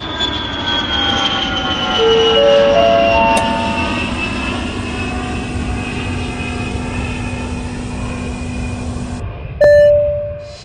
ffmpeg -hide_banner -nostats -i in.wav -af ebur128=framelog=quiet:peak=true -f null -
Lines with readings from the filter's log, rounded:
Integrated loudness:
  I:         -15.2 LUFS
  Threshold: -25.3 LUFS
Loudness range:
  LRA:         9.7 LU
  Threshold: -35.7 LUFS
  LRA low:   -22.0 LUFS
  LRA high:  -12.3 LUFS
True peak:
  Peak:       -1.2 dBFS